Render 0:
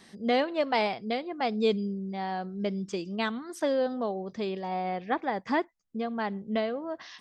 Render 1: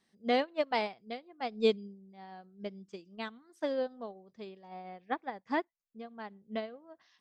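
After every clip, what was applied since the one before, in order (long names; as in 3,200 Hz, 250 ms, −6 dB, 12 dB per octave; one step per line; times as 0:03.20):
expander for the loud parts 2.5 to 1, over −35 dBFS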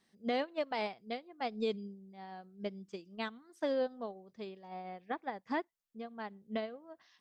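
brickwall limiter −26 dBFS, peak gain reduction 10.5 dB
level +1 dB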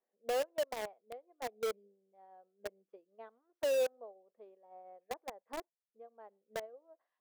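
four-pole ladder band-pass 600 Hz, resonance 55%
in parallel at −8 dB: log-companded quantiser 2 bits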